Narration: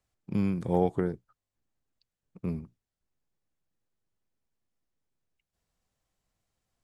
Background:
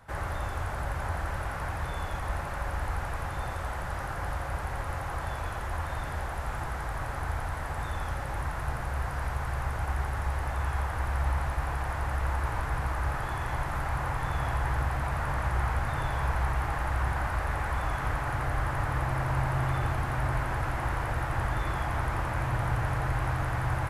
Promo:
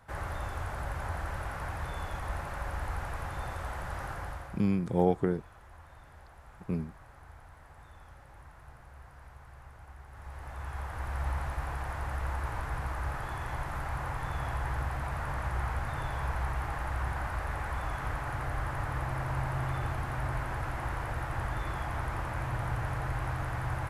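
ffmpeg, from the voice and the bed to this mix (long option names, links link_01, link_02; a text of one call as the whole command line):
ffmpeg -i stem1.wav -i stem2.wav -filter_complex "[0:a]adelay=4250,volume=0dB[link_01];[1:a]volume=11.5dB,afade=type=out:start_time=4.09:duration=0.58:silence=0.158489,afade=type=in:start_time=10.07:duration=1.21:silence=0.177828[link_02];[link_01][link_02]amix=inputs=2:normalize=0" out.wav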